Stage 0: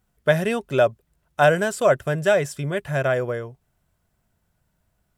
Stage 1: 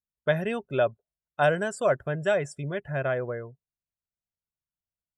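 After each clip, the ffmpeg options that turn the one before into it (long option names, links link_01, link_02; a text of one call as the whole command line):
ffmpeg -i in.wav -af "afftdn=noise_reduction=26:noise_floor=-38,volume=-6dB" out.wav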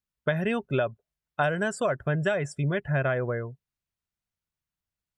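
ffmpeg -i in.wav -af "highshelf=frequency=4300:gain=-8,acompressor=threshold=-26dB:ratio=6,equalizer=frequency=550:width_type=o:width=1.7:gain=-5,volume=7.5dB" out.wav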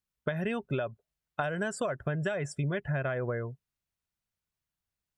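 ffmpeg -i in.wav -af "acompressor=threshold=-28dB:ratio=6" out.wav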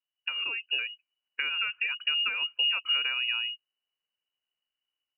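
ffmpeg -i in.wav -af "lowshelf=frequency=400:gain=8,lowpass=frequency=2600:width_type=q:width=0.5098,lowpass=frequency=2600:width_type=q:width=0.6013,lowpass=frequency=2600:width_type=q:width=0.9,lowpass=frequency=2600:width_type=q:width=2.563,afreqshift=-3000,dynaudnorm=framelen=510:gausssize=3:maxgain=4dB,volume=-6.5dB" out.wav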